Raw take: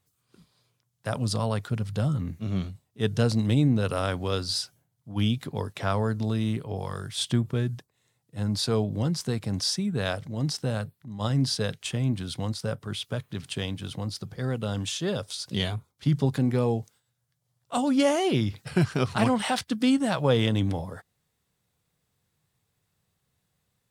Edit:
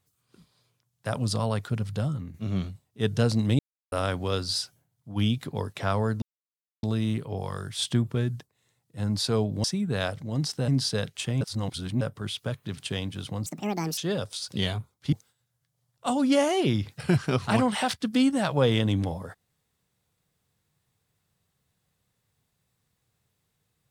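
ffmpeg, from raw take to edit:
-filter_complex "[0:a]asplit=12[s0][s1][s2][s3][s4][s5][s6][s7][s8][s9][s10][s11];[s0]atrim=end=2.34,asetpts=PTS-STARTPTS,afade=t=out:st=1.88:d=0.46:silence=0.354813[s12];[s1]atrim=start=2.34:end=3.59,asetpts=PTS-STARTPTS,afade=t=in:d=0.004:c=hsin:silence=0.354813,afade=t=out:st=1.246:d=0.004:c=hsin[s13];[s2]atrim=start=3.59:end=3.92,asetpts=PTS-STARTPTS,volume=0[s14];[s3]atrim=start=3.92:end=6.22,asetpts=PTS-STARTPTS,afade=t=in:d=0.004:c=hsin,afade=t=out:st=2.296:d=0.004:c=hsin,apad=pad_dur=0.61[s15];[s4]atrim=start=6.22:end=9.032,asetpts=PTS-STARTPTS,afade=t=in:d=0.004:c=hsin[s16];[s5]atrim=start=9.688:end=10.732[s17];[s6]atrim=start=11.338:end=12.072[s18];[s7]atrim=start=12.068:end=12.672,asetpts=PTS-STARTPTS,areverse[s19];[s8]atrim=start=12.668:end=14.124[s20];[s9]atrim=start=14.12:end=14.95,asetpts=PTS-STARTPTS,asetrate=71001,aresample=44100[s21];[s10]atrim=start=14.946:end=16.102[s22];[s11]atrim=start=16.798[s23];[s12][s13][s14][s15][s16]concat=n=5:v=0:a=1[s24];[s24][s17]acrossfade=d=0.004:c1=hsin:c2=hsin[s25];[s25][s18]acrossfade=d=0.004:c1=hsin:c2=hsin[s26];[s26][s19]acrossfade=d=0.004:c1=hsin:c2=hsin[s27];[s27][s20]acrossfade=d=0.004:c1=hsin:c2=hsin[s28];[s28][s21]acrossfade=d=0.004:c1=hsin:c2=hsin[s29];[s29][s22]acrossfade=d=0.004:c1=hsin:c2=hsin[s30];[s30][s23]acrossfade=d=0.004:c1=hsin:c2=hsin"

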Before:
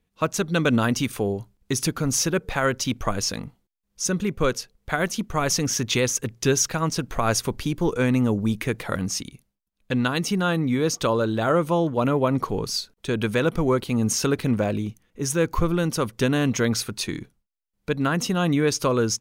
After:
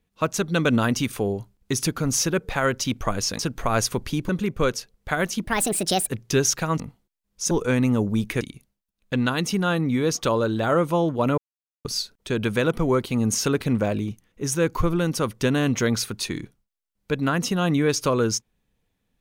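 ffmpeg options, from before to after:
-filter_complex "[0:a]asplit=10[s0][s1][s2][s3][s4][s5][s6][s7][s8][s9];[s0]atrim=end=3.392[s10];[s1]atrim=start=6.918:end=7.822[s11];[s2]atrim=start=4.098:end=5.254[s12];[s3]atrim=start=5.25:end=6.2,asetpts=PTS-STARTPTS,asetrate=65709,aresample=44100,atrim=end_sample=28117,asetpts=PTS-STARTPTS[s13];[s4]atrim=start=6.196:end=6.922[s14];[s5]atrim=start=3.388:end=4.102[s15];[s6]atrim=start=7.818:end=8.722[s16];[s7]atrim=start=9.188:end=12.16,asetpts=PTS-STARTPTS,afade=t=out:st=2.968:d=0.004:c=hsin[s17];[s8]atrim=start=12.16:end=12.63,asetpts=PTS-STARTPTS,volume=0[s18];[s9]atrim=start=12.63,asetpts=PTS-STARTPTS,afade=t=in:d=0.004:c=hsin[s19];[s10][s11]acrossfade=d=0.004:c1=hsin:c2=hsin[s20];[s20][s12]acrossfade=d=0.004:c1=hsin:c2=hsin[s21];[s21][s13]acrossfade=d=0.004:c1=hsin:c2=hsin[s22];[s22][s14]acrossfade=d=0.004:c1=hsin:c2=hsin[s23];[s23][s15]acrossfade=d=0.004:c1=hsin:c2=hsin[s24];[s24][s16]acrossfade=d=0.004:c1=hsin:c2=hsin[s25];[s17][s18][s19]concat=n=3:v=0:a=1[s26];[s25][s26]acrossfade=d=0.004:c1=hsin:c2=hsin"

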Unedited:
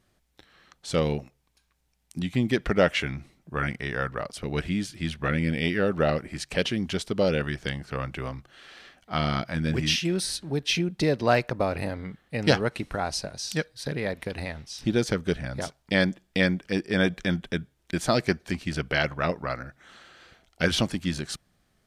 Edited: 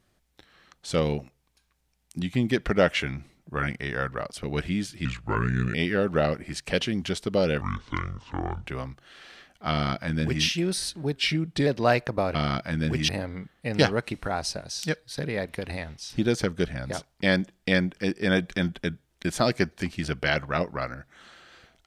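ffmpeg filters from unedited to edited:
-filter_complex "[0:a]asplit=9[s0][s1][s2][s3][s4][s5][s6][s7][s8];[s0]atrim=end=5.054[s9];[s1]atrim=start=5.05:end=5.58,asetpts=PTS-STARTPTS,asetrate=33957,aresample=44100[s10];[s2]atrim=start=5.576:end=7.454[s11];[s3]atrim=start=7.45:end=8.14,asetpts=PTS-STARTPTS,asetrate=28665,aresample=44100[s12];[s4]atrim=start=8.136:end=10.624[s13];[s5]atrim=start=10.62:end=11.09,asetpts=PTS-STARTPTS,asetrate=40131,aresample=44100[s14];[s6]atrim=start=11.086:end=11.772[s15];[s7]atrim=start=9.178:end=9.922[s16];[s8]atrim=start=11.768[s17];[s9][s10]acrossfade=d=0.004:c1=hsin:c2=hsin[s18];[s18][s11]acrossfade=d=0.004:c1=hsin:c2=hsin[s19];[s19][s12]acrossfade=d=0.004:c1=hsin:c2=hsin[s20];[s20][s13]acrossfade=d=0.004:c1=hsin:c2=hsin[s21];[s21][s14]acrossfade=d=0.004:c1=hsin:c2=hsin[s22];[s22][s15]acrossfade=d=0.004:c1=hsin:c2=hsin[s23];[s23][s16]acrossfade=d=0.004:c1=hsin:c2=hsin[s24];[s24][s17]acrossfade=d=0.004:c1=hsin:c2=hsin"

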